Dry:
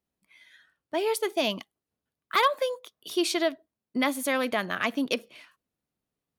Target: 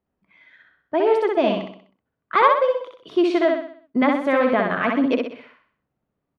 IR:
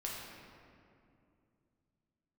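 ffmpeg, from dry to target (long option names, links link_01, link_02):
-filter_complex "[0:a]lowpass=1600,asplit=2[link_01][link_02];[link_02]aecho=0:1:63|126|189|252|315|378:0.668|0.294|0.129|0.0569|0.0251|0.011[link_03];[link_01][link_03]amix=inputs=2:normalize=0,volume=7.5dB"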